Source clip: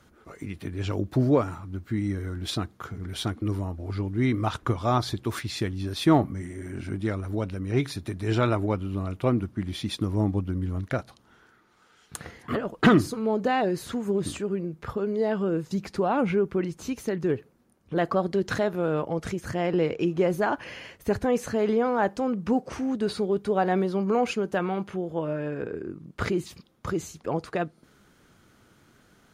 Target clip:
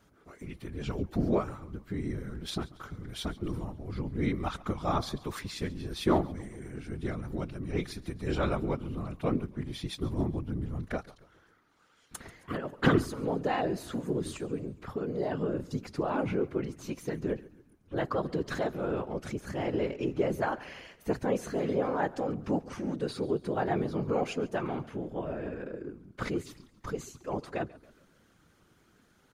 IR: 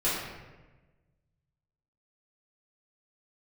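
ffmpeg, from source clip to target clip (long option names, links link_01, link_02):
-filter_complex "[0:a]afftfilt=real='hypot(re,im)*cos(2*PI*random(0))':imag='hypot(re,im)*sin(2*PI*random(1))':win_size=512:overlap=0.75,asplit=2[link_01][link_02];[link_02]asplit=4[link_03][link_04][link_05][link_06];[link_03]adelay=138,afreqshift=-46,volume=-20dB[link_07];[link_04]adelay=276,afreqshift=-92,volume=-26.2dB[link_08];[link_05]adelay=414,afreqshift=-138,volume=-32.4dB[link_09];[link_06]adelay=552,afreqshift=-184,volume=-38.6dB[link_10];[link_07][link_08][link_09][link_10]amix=inputs=4:normalize=0[link_11];[link_01][link_11]amix=inputs=2:normalize=0"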